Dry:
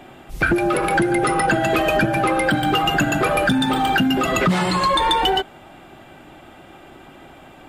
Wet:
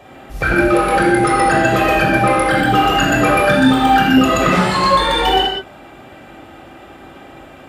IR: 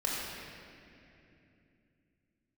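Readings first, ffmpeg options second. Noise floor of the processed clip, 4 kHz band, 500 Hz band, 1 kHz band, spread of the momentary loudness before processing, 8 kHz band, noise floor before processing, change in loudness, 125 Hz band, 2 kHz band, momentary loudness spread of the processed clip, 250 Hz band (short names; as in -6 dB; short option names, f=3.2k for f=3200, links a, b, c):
-40 dBFS, +3.5 dB, +5.0 dB, +5.5 dB, 2 LU, +3.0 dB, -45 dBFS, +5.0 dB, +4.0 dB, +5.0 dB, 3 LU, +5.5 dB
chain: -filter_complex "[0:a]highpass=47[a];[1:a]atrim=start_sample=2205,afade=t=out:st=0.26:d=0.01,atrim=end_sample=11907[b];[a][b]afir=irnorm=-1:irlink=0,volume=-1dB"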